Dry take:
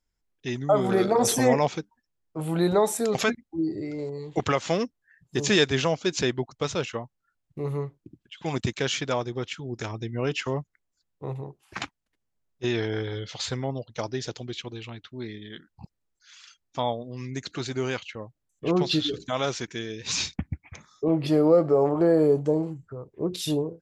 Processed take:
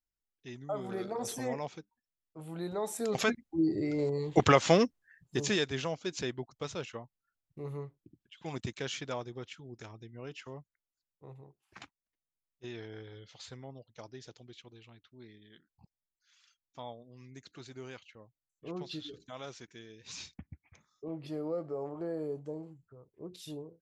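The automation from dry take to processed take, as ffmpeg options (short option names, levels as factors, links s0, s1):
-af "volume=1.26,afade=t=in:st=2.76:d=0.48:silence=0.316228,afade=t=in:st=3.24:d=0.86:silence=0.446684,afade=t=out:st=4.73:d=0.87:silence=0.237137,afade=t=out:st=9.16:d=0.94:silence=0.473151"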